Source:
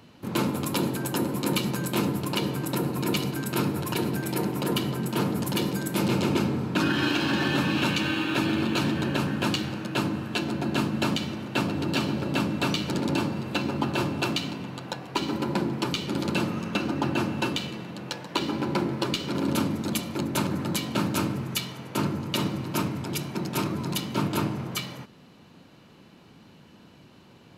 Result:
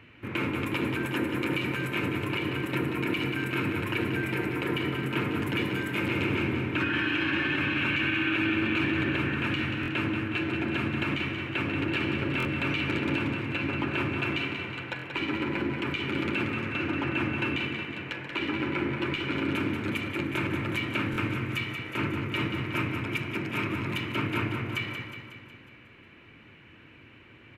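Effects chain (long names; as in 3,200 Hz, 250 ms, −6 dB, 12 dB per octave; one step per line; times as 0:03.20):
drawn EQ curve 110 Hz 0 dB, 180 Hz −12 dB, 310 Hz −2 dB, 780 Hz −10 dB, 2,300 Hz +9 dB, 4,500 Hz −17 dB
brickwall limiter −21.5 dBFS, peak gain reduction 10 dB
repeating echo 183 ms, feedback 57%, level −7 dB
buffer that repeats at 0:09.81/0:12.38/0:14.97/0:21.11, samples 1,024, times 2
level +2 dB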